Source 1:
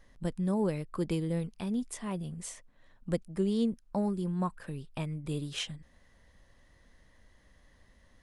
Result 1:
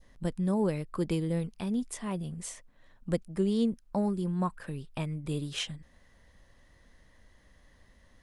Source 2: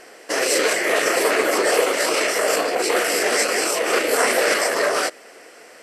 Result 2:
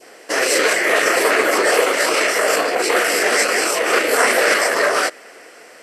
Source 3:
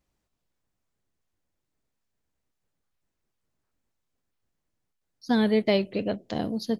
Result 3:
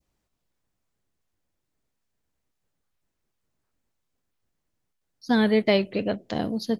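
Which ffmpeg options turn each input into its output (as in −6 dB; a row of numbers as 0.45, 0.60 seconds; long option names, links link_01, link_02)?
-af "adynamicequalizer=threshold=0.0158:dfrequency=1600:dqfactor=0.93:tfrequency=1600:tqfactor=0.93:attack=5:release=100:ratio=0.375:range=2:mode=boostabove:tftype=bell,volume=1.5dB"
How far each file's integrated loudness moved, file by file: +1.5, +3.0, +2.0 LU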